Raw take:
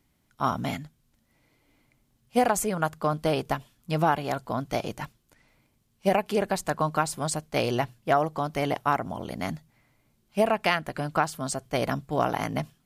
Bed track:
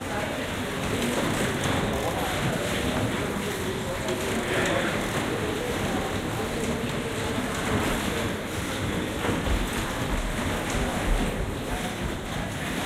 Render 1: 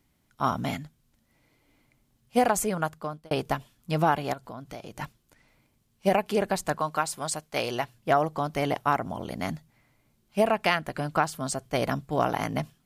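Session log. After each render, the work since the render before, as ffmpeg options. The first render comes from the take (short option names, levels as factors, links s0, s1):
-filter_complex "[0:a]asettb=1/sr,asplit=3[s0][s1][s2];[s0]atrim=end=4.334[s3];[s1]atrim=start=4.33:end=4.96,asetpts=PTS-STARTPTS,afade=t=in:d=0.004:c=qsin,afade=t=out:st=0.626:d=0.004:c=qsin,acompressor=threshold=0.00891:ratio=2.5:attack=3.2:release=140:knee=1:detection=peak[s4];[s2]atrim=start=4.956[s5];[s3][s4]acrossfade=d=0.004:c1=hsin:c2=qsin[s6];[s6][s5]acrossfade=d=0.004:c1=qsin:c2=hsin,asettb=1/sr,asplit=3[s7][s8][s9];[s7]atrim=end=6.784[s10];[s8]atrim=start=6.78:end=7.94,asetpts=PTS-STARTPTS,afade=t=in:d=0.004:c=qsin,afade=t=out:st=1.156:d=0.004:c=qsin,lowshelf=f=390:g=-9.5[s11];[s9]atrim=start=7.936[s12];[s10][s11]acrossfade=d=0.004:c1=hsin:c2=qsin[s13];[s13][s12]acrossfade=d=0.004:c1=qsin:c2=hsin,asplit=2[s14][s15];[s14]atrim=end=3.31,asetpts=PTS-STARTPTS,afade=t=out:st=2.72:d=0.59[s16];[s15]atrim=start=3.31,asetpts=PTS-STARTPTS,afade=t=in:d=0.004:c=hsin[s17];[s16][s17]concat=n=2:v=0:a=1"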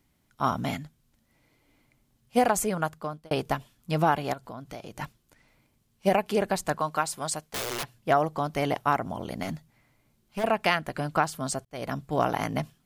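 -filter_complex "[0:a]asettb=1/sr,asplit=3[s0][s1][s2];[s0]atrim=end=7.404[s3];[s1]atrim=start=7.4:end=7.96,asetpts=PTS-STARTPTS,afade=t=in:d=0.004:c=qsin,afade=t=out:st=0.556:d=0.004:c=qsin,aeval=exprs='(mod(20*val(0)+1,2)-1)/20':c=same[s4];[s2]atrim=start=7.956[s5];[s3][s4]acrossfade=d=0.004:c1=hsin:c2=qsin[s6];[s6][s5]acrossfade=d=0.004:c1=qsin:c2=hsin,asettb=1/sr,asplit=3[s7][s8][s9];[s7]atrim=end=9.434[s10];[s8]atrim=start=9.43:end=10.44,asetpts=PTS-STARTPTS,afade=t=in:d=0.004:c=qsin,afade=t=out:st=1.006:d=0.004:c=qsin,asoftclip=type=hard:threshold=0.0422[s11];[s9]atrim=start=10.436[s12];[s10][s11]acrossfade=d=0.004:c1=hsin:c2=qsin[s13];[s13][s12]acrossfade=d=0.004:c1=qsin:c2=hsin,asplit=2[s14][s15];[s14]atrim=end=11.65,asetpts=PTS-STARTPTS,afade=t=out:st=11.646:d=0.004:c=hsin[s16];[s15]atrim=start=11.65,asetpts=PTS-STARTPTS,afade=t=in:d=0.41[s17];[s16][s17]concat=n=2:v=0:a=1"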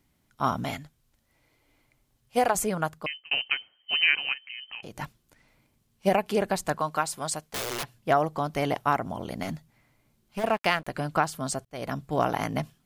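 -filter_complex "[0:a]asettb=1/sr,asplit=3[s0][s1][s2];[s0]atrim=end=0.644[s3];[s1]atrim=start=0.64:end=2.55,asetpts=PTS-STARTPTS,afade=t=in:d=0.004:c=qsin,afade=t=out:st=1.906:d=0.004:c=qsin,equalizer=f=200:w=1.5:g=-8[s4];[s2]atrim=start=2.546[s5];[s3][s4]acrossfade=d=0.004:c1=hsin:c2=qsin[s6];[s6][s5]acrossfade=d=0.004:c1=qsin:c2=hsin,asettb=1/sr,asplit=3[s7][s8][s9];[s7]atrim=end=3.064[s10];[s8]atrim=start=3.06:end=4.83,asetpts=PTS-STARTPTS,afade=t=in:d=0.004:c=qsin,afade=t=out:st=1.766:d=0.004:c=qsin,lowpass=f=2700:t=q:w=0.5098,lowpass=f=2700:t=q:w=0.6013,lowpass=f=2700:t=q:w=0.9,lowpass=f=2700:t=q:w=2.563,afreqshift=-3200[s11];[s9]atrim=start=4.826[s12];[s10][s11]acrossfade=d=0.004:c1=hsin:c2=qsin[s13];[s13][s12]acrossfade=d=0.004:c1=qsin:c2=hsin,asettb=1/sr,asplit=3[s14][s15][s16];[s14]atrim=end=10.404[s17];[s15]atrim=start=10.4:end=10.87,asetpts=PTS-STARTPTS,afade=t=in:d=0.004:c=qsin,afade=t=out:st=0.466:d=0.004:c=qsin,aeval=exprs='sgn(val(0))*max(abs(val(0))-0.00631,0)':c=same[s18];[s16]atrim=start=10.866[s19];[s17][s18]acrossfade=d=0.004:c1=hsin:c2=qsin[s20];[s20][s19]acrossfade=d=0.004:c1=qsin:c2=hsin"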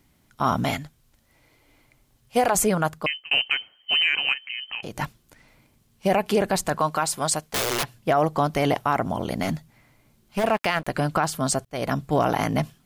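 -af "alimiter=limit=0.126:level=0:latency=1:release=14,acontrast=88"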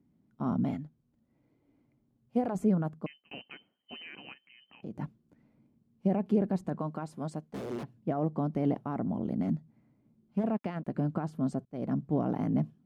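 -af "bandpass=f=220:t=q:w=1.8:csg=0,crystalizer=i=1:c=0"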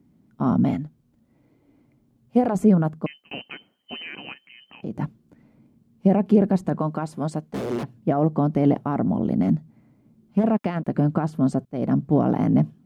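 -af "volume=3.16"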